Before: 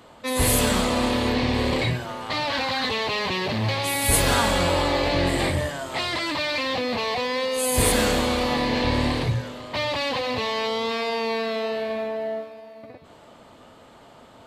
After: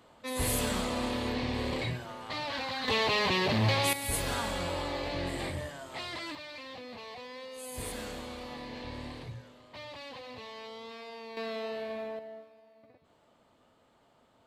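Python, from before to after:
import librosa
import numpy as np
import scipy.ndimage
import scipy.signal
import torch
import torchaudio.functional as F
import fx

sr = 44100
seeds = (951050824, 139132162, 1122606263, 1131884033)

y = fx.gain(x, sr, db=fx.steps((0.0, -10.0), (2.88, -2.0), (3.93, -12.5), (6.35, -19.0), (11.37, -10.0), (12.19, -17.0)))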